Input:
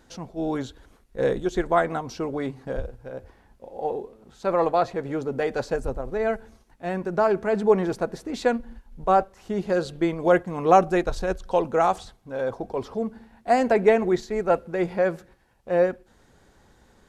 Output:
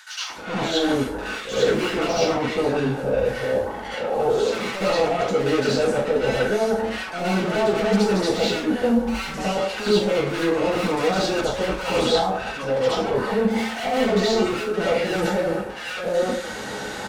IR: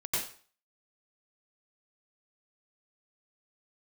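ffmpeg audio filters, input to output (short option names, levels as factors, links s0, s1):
-filter_complex "[0:a]asplit=2[s0][s1];[s1]highpass=f=720:p=1,volume=70.8,asoftclip=type=tanh:threshold=0.668[s2];[s0][s2]amix=inputs=2:normalize=0,lowpass=f=5800:p=1,volume=0.501,areverse,acompressor=threshold=0.0708:ratio=6,areverse,acrossover=split=1200[s3][s4];[s3]adelay=300[s5];[s5][s4]amix=inputs=2:normalize=0[s6];[1:a]atrim=start_sample=2205,asetrate=57330,aresample=44100[s7];[s6][s7]afir=irnorm=-1:irlink=0,acrossover=split=5000[s8][s9];[s9]acompressor=threshold=0.0126:ratio=4:attack=1:release=60[s10];[s8][s10]amix=inputs=2:normalize=0,volume=0.841"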